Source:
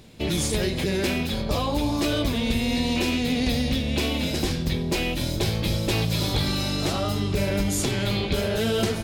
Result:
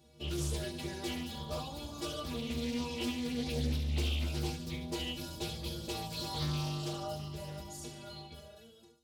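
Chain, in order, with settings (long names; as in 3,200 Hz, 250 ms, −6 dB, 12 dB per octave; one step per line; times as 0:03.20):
fade-out on the ending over 2.68 s
high-pass filter 46 Hz 24 dB per octave
parametric band 2,000 Hz −7.5 dB 0.6 octaves
mains-hum notches 60/120/180/240 Hz
stiff-string resonator 71 Hz, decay 0.67 s, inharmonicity 0.03
delay with a high-pass on its return 72 ms, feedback 57%, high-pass 4,000 Hz, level −8.5 dB
highs frequency-modulated by the lows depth 0.4 ms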